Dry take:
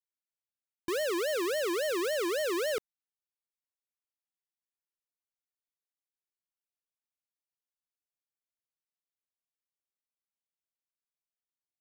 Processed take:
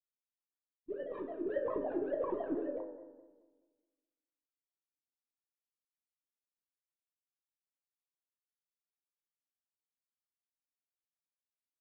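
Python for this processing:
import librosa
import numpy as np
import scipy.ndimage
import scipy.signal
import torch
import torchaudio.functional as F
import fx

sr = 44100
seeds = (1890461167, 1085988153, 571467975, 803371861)

p1 = fx.low_shelf(x, sr, hz=220.0, db=11.0)
p2 = fx.leveller(p1, sr, passes=5, at=(1.42, 2.56))
p3 = fx.wah_lfo(p2, sr, hz=5.4, low_hz=240.0, high_hz=1300.0, q=12.0)
p4 = fx.lpc_vocoder(p3, sr, seeds[0], excitation='pitch_kept', order=16)
p5 = fx.doubler(p4, sr, ms=37.0, db=-11.0)
p6 = p5 + fx.echo_wet_lowpass(p5, sr, ms=61, feedback_pct=76, hz=440.0, wet_db=-14.0, dry=0)
p7 = fx.rev_fdn(p6, sr, rt60_s=1.3, lf_ratio=1.25, hf_ratio=0.6, size_ms=11.0, drr_db=3.5)
y = fx.vibrato_shape(p7, sr, shape='saw_down', rate_hz=4.7, depth_cents=100.0)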